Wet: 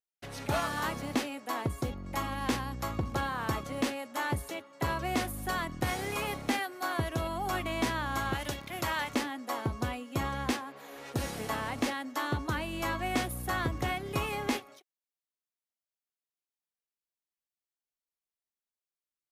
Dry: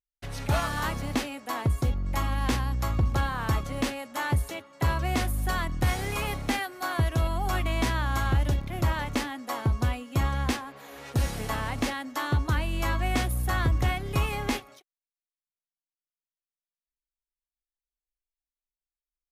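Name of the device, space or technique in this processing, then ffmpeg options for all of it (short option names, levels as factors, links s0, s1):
filter by subtraction: -filter_complex "[0:a]asettb=1/sr,asplit=3[s0][s1][s2];[s0]atrim=end=8.334[s3];[s1]atrim=start=8.33:end=9.14,asetpts=PTS-STARTPTS,afade=t=in:d=0.004:c=qsin,afade=t=out:st=0.806:d=0.004:c=qsin,tiltshelf=f=780:g=-6[s4];[s2]atrim=start=9.136[s5];[s3][s4]acrossfade=d=0.004:c1=hsin:c2=qsin[s6];[s6][s5]acrossfade=d=0.004:c1=qsin:c2=hsin,asplit=2[s7][s8];[s8]lowpass=310,volume=-1[s9];[s7][s9]amix=inputs=2:normalize=0,volume=0.708"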